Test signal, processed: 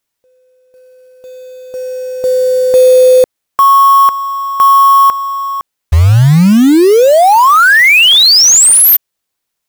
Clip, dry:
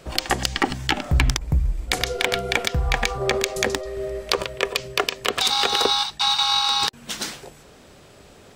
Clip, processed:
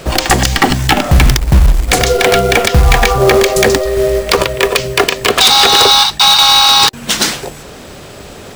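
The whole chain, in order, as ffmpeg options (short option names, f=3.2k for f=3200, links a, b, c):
-af "acrusher=bits=4:mode=log:mix=0:aa=0.000001,aeval=exprs='clip(val(0),-1,0.376)':c=same,apsyclip=18.5dB,volume=-2dB"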